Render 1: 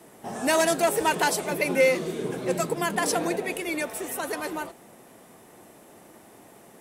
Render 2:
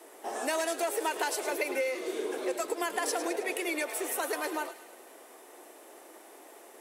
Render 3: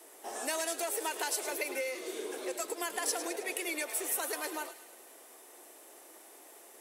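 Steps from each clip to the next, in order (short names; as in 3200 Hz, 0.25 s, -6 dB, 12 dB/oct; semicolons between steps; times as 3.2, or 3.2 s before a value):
compressor 12:1, threshold -27 dBFS, peak gain reduction 12.5 dB; steep high-pass 310 Hz 36 dB/oct; thin delay 0.106 s, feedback 55%, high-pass 1600 Hz, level -11 dB
high shelf 3200 Hz +9 dB; gain -6 dB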